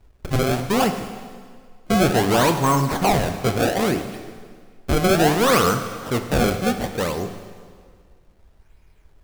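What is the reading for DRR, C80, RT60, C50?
7.0 dB, 10.0 dB, 1.8 s, 8.5 dB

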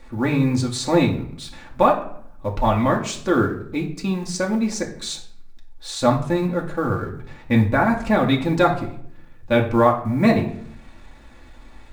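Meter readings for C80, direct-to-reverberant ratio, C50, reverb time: 14.0 dB, −1.0 dB, 9.5 dB, 0.65 s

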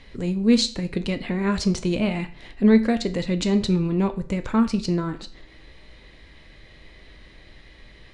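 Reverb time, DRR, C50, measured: 0.45 s, 8.0 dB, 15.0 dB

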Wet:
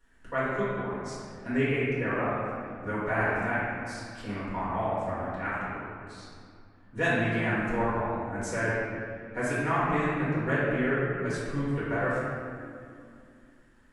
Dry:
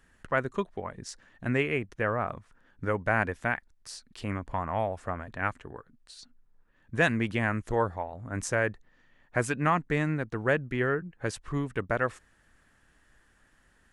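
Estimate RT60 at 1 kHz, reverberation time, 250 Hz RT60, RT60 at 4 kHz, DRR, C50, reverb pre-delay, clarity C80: 2.3 s, 2.4 s, 3.5 s, 1.4 s, −11.0 dB, −3.5 dB, 4 ms, −1.0 dB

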